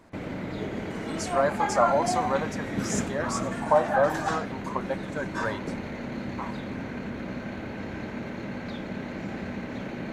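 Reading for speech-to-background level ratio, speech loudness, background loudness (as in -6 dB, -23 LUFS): 7.0 dB, -27.5 LUFS, -34.5 LUFS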